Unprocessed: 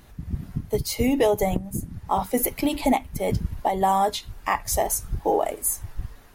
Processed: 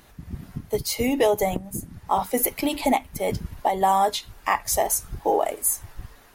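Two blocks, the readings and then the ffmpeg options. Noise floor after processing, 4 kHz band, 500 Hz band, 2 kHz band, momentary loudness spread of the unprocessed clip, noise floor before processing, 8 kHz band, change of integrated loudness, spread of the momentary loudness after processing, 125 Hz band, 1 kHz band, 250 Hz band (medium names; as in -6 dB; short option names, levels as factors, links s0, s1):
-52 dBFS, +2.0 dB, +0.5 dB, +2.0 dB, 11 LU, -48 dBFS, +2.0 dB, +1.0 dB, 14 LU, -5.0 dB, +1.5 dB, -2.0 dB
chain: -af "lowshelf=f=240:g=-9,volume=1.26"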